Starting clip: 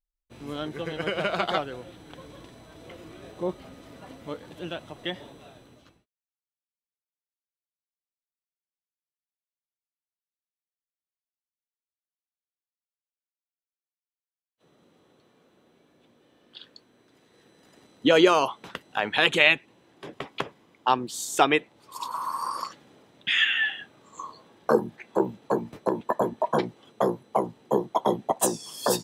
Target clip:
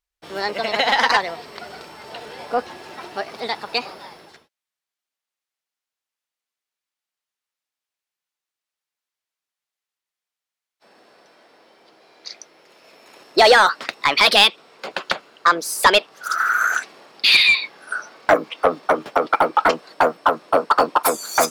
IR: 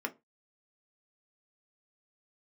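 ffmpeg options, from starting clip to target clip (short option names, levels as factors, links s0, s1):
-filter_complex "[0:a]asplit=2[s0][s1];[s1]highpass=f=720:p=1,volume=7.08,asoftclip=type=tanh:threshold=0.631[s2];[s0][s2]amix=inputs=2:normalize=0,lowpass=f=3300:p=1,volume=0.501,asetrate=59535,aresample=44100,volume=1.33"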